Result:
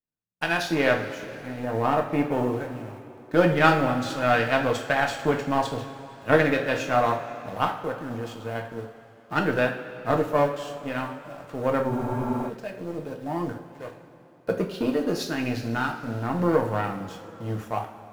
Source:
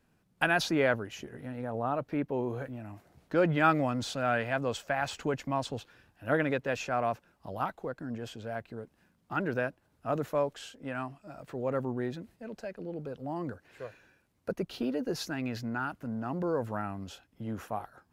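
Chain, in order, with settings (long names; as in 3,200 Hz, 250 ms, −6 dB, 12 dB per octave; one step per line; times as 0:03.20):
automatic gain control gain up to 11.5 dB
in parallel at −10 dB: bit-depth reduction 6 bits, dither none
on the sum: power curve on the samples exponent 1.4
on a send at −1 dB: convolution reverb, pre-delay 3 ms
on the sum: frozen spectrum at 0:11.91, 0.56 s
level −3 dB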